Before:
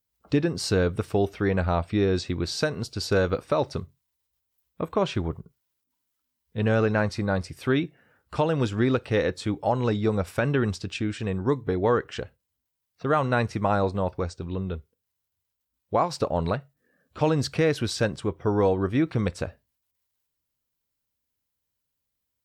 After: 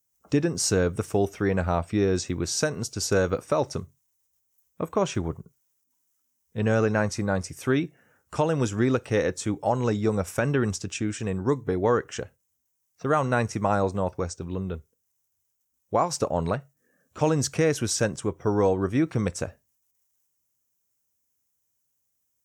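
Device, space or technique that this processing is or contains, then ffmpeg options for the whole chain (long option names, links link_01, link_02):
budget condenser microphone: -af "highpass=77,highshelf=frequency=5200:width_type=q:width=3:gain=6"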